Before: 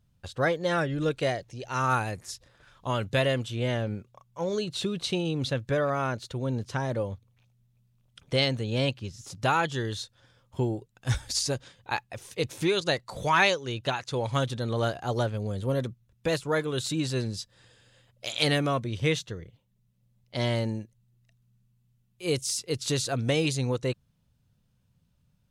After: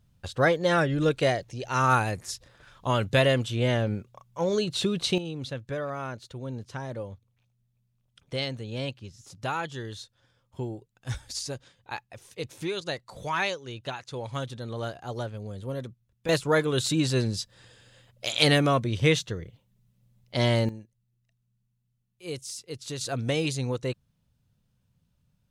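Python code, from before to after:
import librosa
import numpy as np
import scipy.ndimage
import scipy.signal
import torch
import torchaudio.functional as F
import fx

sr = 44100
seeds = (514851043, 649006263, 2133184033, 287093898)

y = fx.gain(x, sr, db=fx.steps((0.0, 3.5), (5.18, -6.0), (16.29, 4.0), (20.69, -8.0), (23.01, -1.5)))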